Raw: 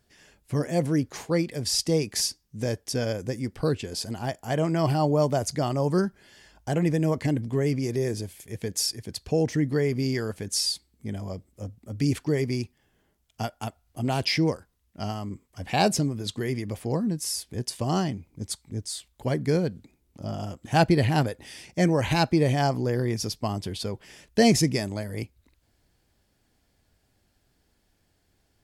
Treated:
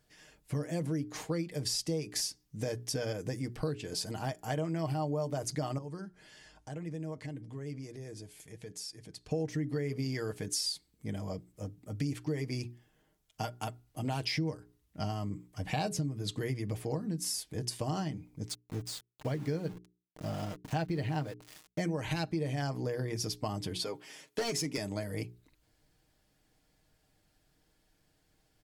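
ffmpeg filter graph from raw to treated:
-filter_complex "[0:a]asettb=1/sr,asplit=3[a][b][c];[a]atrim=end=5.784[d];[b]atrim=start=5.78:end=9.31,asetpts=PTS-STARTPTS,afade=t=in:d=0.004:c=qsin,afade=t=out:st=3.526:d=0.004:c=qsin,lowpass=f=11k:w=0.5412,lowpass=f=11k:w=1.3066,acompressor=threshold=-49dB:ratio=2:attack=3.2:release=140:knee=1:detection=peak[e];[c]atrim=start=9.306[f];[d][e]acrossfade=d=0.004:c1=hsin:c2=qsin[g];[g][f]acrossfade=d=0.004:c1=qsin:c2=hsin,asettb=1/sr,asplit=3[h][i][j];[h]atrim=end=14.354[k];[i]atrim=start=14.35:end=16.81,asetpts=PTS-STARTPTS,afade=t=in:d=0.004:c=qsin,afade=t=out:st=2.456:d=0.004:c=qsin,highpass=42,lowshelf=f=160:g=8[l];[j]atrim=start=16.806[m];[k][l]acrossfade=d=0.004:c1=hsin:c2=qsin[n];[n][m]acrossfade=d=0.004:c1=qsin:c2=hsin,asettb=1/sr,asplit=3[o][p][q];[o]atrim=end=18.484[r];[p]atrim=start=18.48:end=21.8,asetpts=PTS-STARTPTS,afade=t=in:d=0.004:c=qsin,afade=t=out:st=3.316:d=0.004:c=qsin,lowpass=7.4k,highshelf=f=3.9k:g=-3,aeval=exprs='val(0)*gte(abs(val(0)),0.0112)':c=same[s];[q]atrim=start=21.796[t];[r][s]acrossfade=d=0.004:c1=hsin:c2=qsin[u];[u][t]acrossfade=d=0.004:c1=qsin:c2=hsin,asettb=1/sr,asplit=3[v][w][x];[v]atrim=end=23.784[y];[w]atrim=start=23.78:end=24.78,asetpts=PTS-STARTPTS,afade=t=in:d=0.004:c=qsin,afade=t=out:st=0.996:d=0.004:c=qsin,highpass=270,aecho=1:1:7.4:0.56,atrim=end_sample=44100,volume=17.5dB,asoftclip=hard,volume=-17.5dB[z];[x]atrim=start=24.776[aa];[y][z]acrossfade=d=0.004:c1=hsin:c2=qsin[ab];[ab][aa]acrossfade=d=0.004:c1=qsin:c2=hsin,bandreject=f=60:t=h:w=6,bandreject=f=120:t=h:w=6,bandreject=f=180:t=h:w=6,bandreject=f=240:t=h:w=6,bandreject=f=300:t=h:w=6,bandreject=f=360:t=h:w=6,bandreject=f=420:t=h:w=6,aecho=1:1:6.5:0.48,acompressor=threshold=-28dB:ratio=5,volume=-3dB"

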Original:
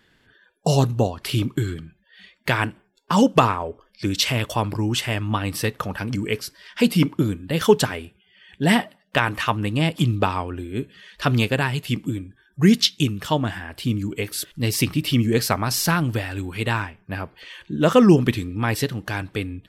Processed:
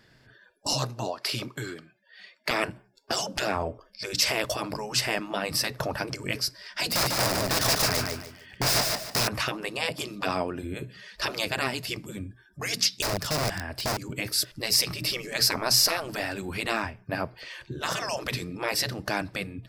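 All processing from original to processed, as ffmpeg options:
-filter_complex "[0:a]asettb=1/sr,asplit=3[a][b][c];[a]atrim=end=0.734[d];[b]atrim=start=0.73:end=2.51,asetpts=PTS-STARTPTS,afade=t=in:d=0.004:c=qsin,afade=t=out:st=1.776:d=0.004:c=qsin,highpass=430,highshelf=f=7.6k:g=-6[e];[c]atrim=start=2.506[f];[d][e]acrossfade=d=0.004:c1=hsin:c2=qsin[g];[g][f]acrossfade=d=0.004:c1=qsin:c2=hsin,asettb=1/sr,asplit=3[h][i][j];[h]atrim=end=6.884[k];[i]atrim=start=6.88:end=9.28,asetpts=PTS-STARTPTS,afade=t=in:d=0.004:c=qsin,afade=t=out:st=2.396:d=0.004:c=qsin,aeval=exprs='(mod(10.6*val(0)+1,2)-1)/10.6':c=same,aecho=1:1:148|296|444|592:0.631|0.183|0.0531|0.0154,atrim=end_sample=105840[l];[j]atrim=start=9.276[m];[k][l]acrossfade=d=0.004:c1=hsin:c2=qsin[n];[n][m]acrossfade=d=0.004:c1=qsin:c2=hsin,asettb=1/sr,asplit=3[o][p][q];[o]atrim=end=13.024[r];[p]atrim=start=13.02:end=13.97,asetpts=PTS-STARTPTS,afade=t=in:d=0.004:c=qsin,afade=t=out:st=0.946:d=0.004:c=qsin,acrossover=split=300|3000[s][t][u];[t]acompressor=threshold=-32dB:ratio=10:attack=3.2:release=140:knee=2.83:detection=peak[v];[s][v][u]amix=inputs=3:normalize=0,aeval=exprs='(mod(15*val(0)+1,2)-1)/15':c=same[w];[q]atrim=start=13.966[x];[r][w]acrossfade=d=0.004:c1=hsin:c2=qsin[y];[y][x]acrossfade=d=0.004:c1=qsin:c2=hsin,afftfilt=real='re*lt(hypot(re,im),0.224)':imag='im*lt(hypot(re,im),0.224)':win_size=1024:overlap=0.75,equalizer=f=125:t=o:w=0.33:g=10,equalizer=f=630:t=o:w=0.33:g=7,equalizer=f=3.15k:t=o:w=0.33:g=-6,equalizer=f=5k:t=o:w=0.33:g=10"

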